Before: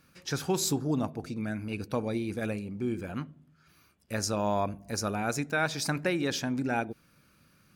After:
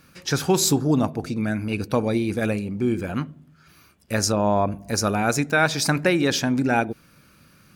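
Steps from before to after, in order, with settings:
0:04.32–0:04.72: high-shelf EQ 2,100 Hz −11.5 dB
level +9 dB

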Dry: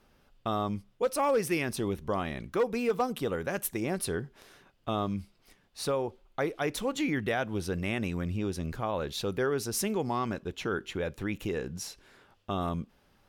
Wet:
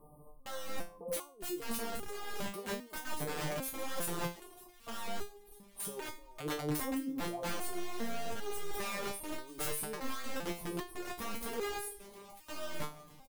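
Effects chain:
far-end echo of a speakerphone 300 ms, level −28 dB
compressor whose output falls as the input rises −38 dBFS, ratio −1
brick-wall band-stop 1,200–8,500 Hz
wrap-around overflow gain 33 dB
on a send: delay with a high-pass on its return 946 ms, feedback 54%, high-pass 2,200 Hz, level −15 dB
on the sum: step-sequenced resonator 2.5 Hz 150–410 Hz
level +14 dB

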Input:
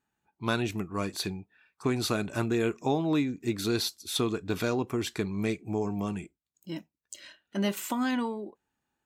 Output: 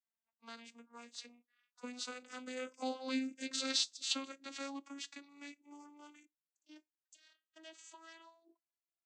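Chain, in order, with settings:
vocoder with a gliding carrier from A3, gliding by +8 semitones
source passing by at 0:03.58, 6 m/s, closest 3.3 metres
first difference
level +16.5 dB

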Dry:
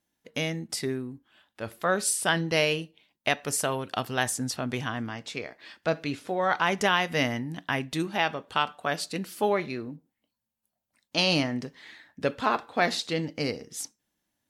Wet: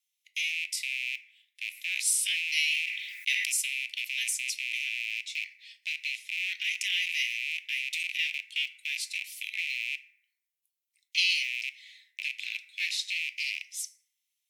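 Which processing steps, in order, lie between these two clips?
loose part that buzzes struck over −43 dBFS, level −19 dBFS
Butterworth high-pass 2,100 Hz 72 dB per octave
notch filter 4,600 Hz, Q 14
feedback delay network reverb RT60 1.1 s, high-frequency decay 0.35×, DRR 8.5 dB
0:01.70–0:03.57: level that may fall only so fast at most 36 dB per second

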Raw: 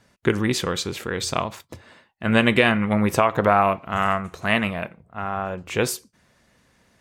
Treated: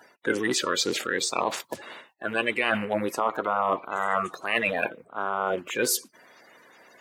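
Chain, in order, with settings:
spectral magnitudes quantised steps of 30 dB
high-pass filter 330 Hz 12 dB per octave
reversed playback
downward compressor 6 to 1, threshold −31 dBFS, peak gain reduction 17 dB
reversed playback
level +8.5 dB

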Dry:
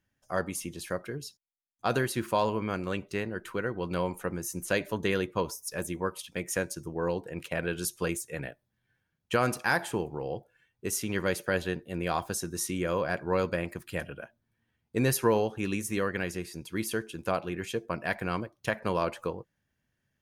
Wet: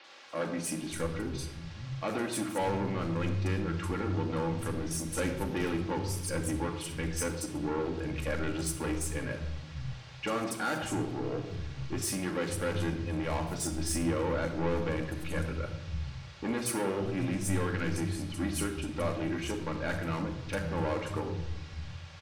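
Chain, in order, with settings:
low-shelf EQ 230 Hz +8 dB
in parallel at −1.5 dB: brickwall limiter −20.5 dBFS, peak gain reduction 9 dB
on the sum: speed change −9%
noise in a band 370–5,100 Hz −50 dBFS
soft clipping −24 dBFS, distortion −8 dB
three-band delay without the direct sound mids, highs, lows 40/570 ms, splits 150/4,700 Hz
rectangular room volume 3,200 cubic metres, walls furnished, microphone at 2.3 metres
level −4 dB

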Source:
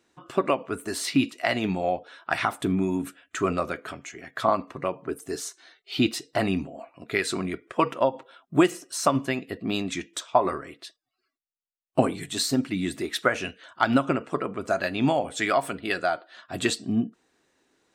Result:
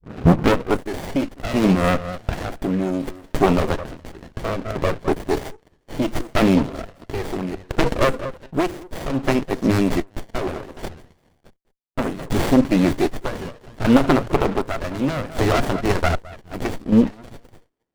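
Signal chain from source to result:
turntable start at the beginning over 0.65 s
leveller curve on the samples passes 3
high-shelf EQ 9,500 Hz +7 dB
echo through a band-pass that steps 207 ms, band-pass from 620 Hz, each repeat 1.4 octaves, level −11.5 dB
square-wave tremolo 0.65 Hz, depth 60%, duty 50%
windowed peak hold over 33 samples
level +1.5 dB

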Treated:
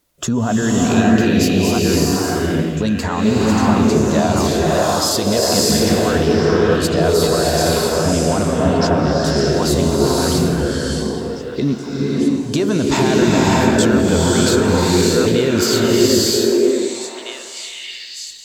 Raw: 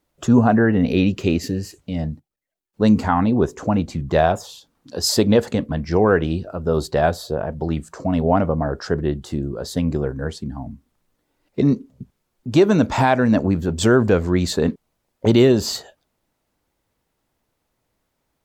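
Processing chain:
high-shelf EQ 2,900 Hz +10 dB
notch filter 810 Hz, Q 12
on a send: echo through a band-pass that steps 635 ms, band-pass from 400 Hz, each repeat 1.4 octaves, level −4 dB
on the sum: boost into a limiter +12 dB
slow-attack reverb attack 610 ms, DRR −4.5 dB
level −9.5 dB

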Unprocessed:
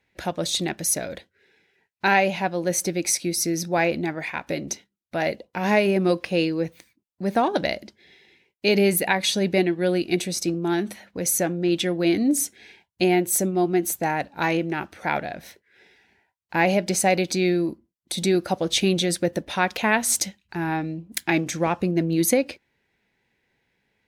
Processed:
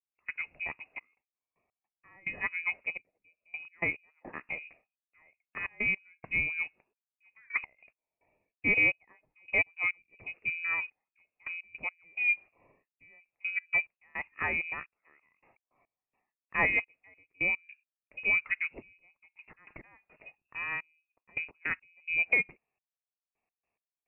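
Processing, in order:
gate pattern "..xxxxx....x.x" 106 BPM −24 dB
voice inversion scrambler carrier 2,700 Hz
expander for the loud parts 1.5 to 1, over −36 dBFS
level −5.5 dB

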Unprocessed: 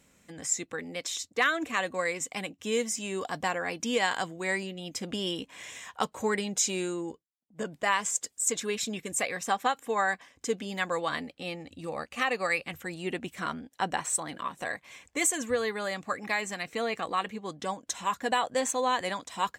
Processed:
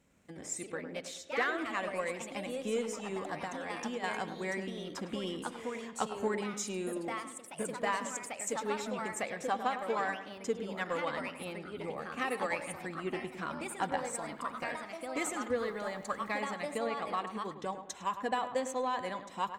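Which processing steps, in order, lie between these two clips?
high-shelf EQ 2,200 Hz −8.5 dB
transient designer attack +4 dB, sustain 0 dB
0:03.43–0:04.04: downward compressor 4 to 1, threshold −32 dBFS, peak gain reduction 10 dB
in parallel at −6 dB: soft clipping −25 dBFS, distortion −11 dB
0:15.56–0:16.36: on the sum: background noise pink −60 dBFS
on a send: feedback echo with a low-pass in the loop 105 ms, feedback 35%, low-pass 2,400 Hz, level −10 dB
on the sum: delay with pitch and tempo change per echo 102 ms, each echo +2 semitones, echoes 2, each echo −6 dB
spring reverb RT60 2 s, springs 43 ms, chirp 25 ms, DRR 18.5 dB
level −8.5 dB

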